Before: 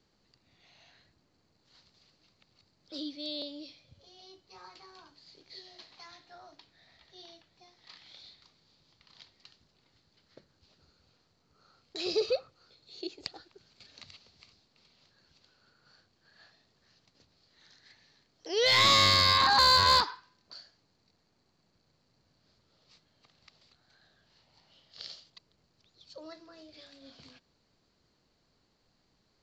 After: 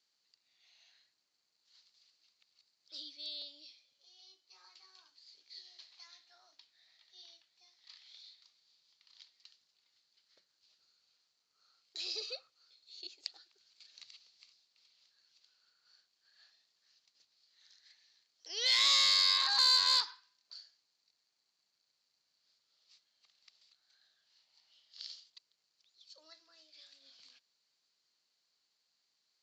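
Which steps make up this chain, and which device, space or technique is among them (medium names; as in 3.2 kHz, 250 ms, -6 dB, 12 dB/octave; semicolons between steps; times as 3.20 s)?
piezo pickup straight into a mixer (low-pass 6.7 kHz 12 dB/octave; differentiator); 3.29–4.84 s: Chebyshev high-pass 260 Hz; trim +2.5 dB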